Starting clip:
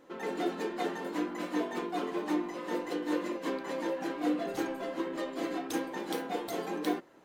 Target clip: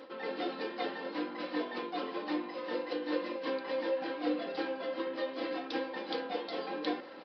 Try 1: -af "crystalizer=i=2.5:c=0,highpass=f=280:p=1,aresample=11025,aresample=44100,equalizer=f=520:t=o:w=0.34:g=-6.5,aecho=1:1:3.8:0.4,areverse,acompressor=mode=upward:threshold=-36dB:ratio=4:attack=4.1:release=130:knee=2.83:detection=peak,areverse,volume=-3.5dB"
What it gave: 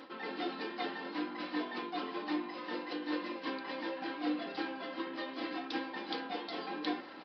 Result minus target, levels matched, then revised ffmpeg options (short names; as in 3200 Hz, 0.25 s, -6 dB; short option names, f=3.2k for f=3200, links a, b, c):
500 Hz band -5.0 dB
-af "crystalizer=i=2.5:c=0,highpass=f=280:p=1,aresample=11025,aresample=44100,equalizer=f=520:t=o:w=0.34:g=5,aecho=1:1:3.8:0.4,areverse,acompressor=mode=upward:threshold=-36dB:ratio=4:attack=4.1:release=130:knee=2.83:detection=peak,areverse,volume=-3.5dB"